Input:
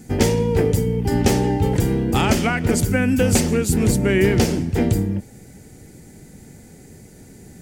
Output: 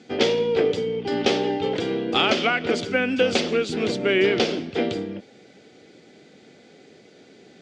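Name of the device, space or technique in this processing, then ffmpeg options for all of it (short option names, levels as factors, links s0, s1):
phone earpiece: -af "highpass=430,equalizer=f=900:t=q:w=4:g=-9,equalizer=f=1800:t=q:w=4:g=-6,equalizer=f=3400:t=q:w=4:g=6,lowpass=f=4500:w=0.5412,lowpass=f=4500:w=1.3066,volume=1.41"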